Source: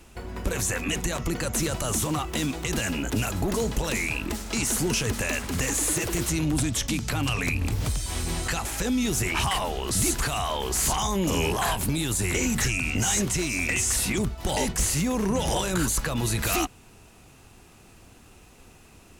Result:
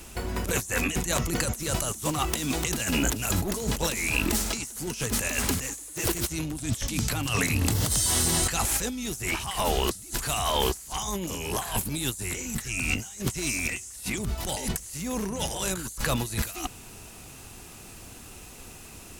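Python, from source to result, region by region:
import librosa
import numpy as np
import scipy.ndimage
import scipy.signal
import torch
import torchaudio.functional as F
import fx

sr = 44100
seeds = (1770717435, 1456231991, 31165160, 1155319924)

y = fx.chain(x, sr, fx.highpass(hz=86.0, slope=12),
    fx.notch(hz=2400.0, q=6.4), at=(7.26, 8.42))
y = fx.high_shelf(y, sr, hz=5000.0, db=9.5)
y = fx.over_compress(y, sr, threshold_db=-28.0, ratio=-0.5)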